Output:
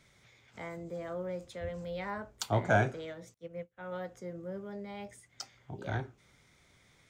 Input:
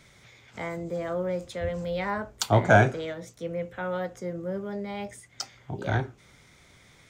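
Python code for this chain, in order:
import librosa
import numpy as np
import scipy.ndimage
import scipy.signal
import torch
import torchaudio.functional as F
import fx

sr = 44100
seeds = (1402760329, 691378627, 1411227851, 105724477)

y = fx.upward_expand(x, sr, threshold_db=-47.0, expansion=2.5, at=(3.34, 3.92))
y = y * librosa.db_to_amplitude(-8.5)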